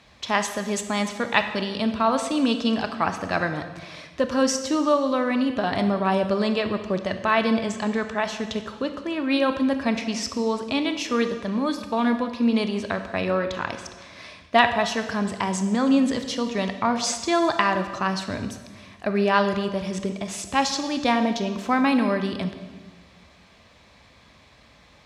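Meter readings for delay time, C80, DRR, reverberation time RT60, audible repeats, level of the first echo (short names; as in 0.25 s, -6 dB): none, 10.5 dB, 7.5 dB, 1.4 s, none, none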